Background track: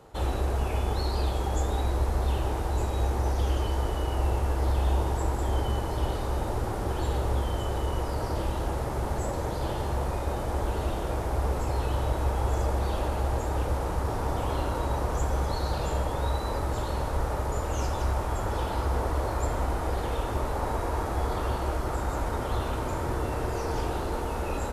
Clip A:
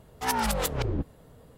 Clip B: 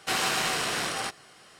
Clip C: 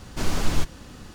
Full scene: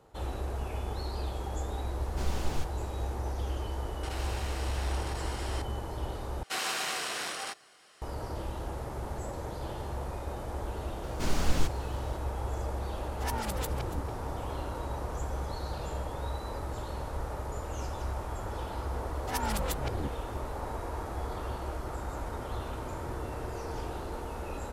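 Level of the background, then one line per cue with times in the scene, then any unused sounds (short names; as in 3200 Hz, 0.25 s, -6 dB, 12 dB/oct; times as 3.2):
background track -7.5 dB
2 add C -11 dB
4.03 add B -17.5 dB + fast leveller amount 100%
6.43 replace with B -6 dB + tone controls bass -10 dB, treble +1 dB
11.03 add C -5 dB
12.99 add A -9 dB + echo 0.284 s -14 dB
19.06 add A -6.5 dB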